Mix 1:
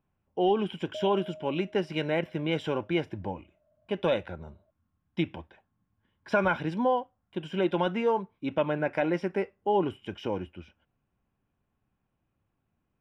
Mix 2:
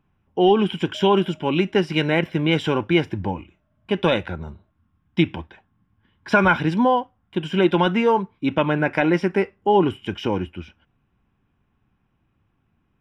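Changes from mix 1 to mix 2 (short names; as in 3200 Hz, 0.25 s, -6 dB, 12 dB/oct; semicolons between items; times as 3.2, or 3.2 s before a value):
speech +11.0 dB; master: add bell 580 Hz -7 dB 0.76 oct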